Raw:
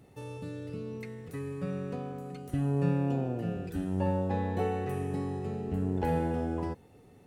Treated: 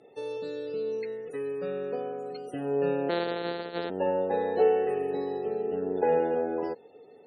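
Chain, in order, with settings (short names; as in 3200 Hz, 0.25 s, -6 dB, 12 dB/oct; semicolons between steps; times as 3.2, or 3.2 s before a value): 3.09–3.9 sample sorter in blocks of 256 samples; loudest bins only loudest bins 64; speaker cabinet 440–9100 Hz, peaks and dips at 450 Hz +9 dB, 1100 Hz -10 dB, 2200 Hz -6 dB, 4100 Hz +7 dB; gain +6 dB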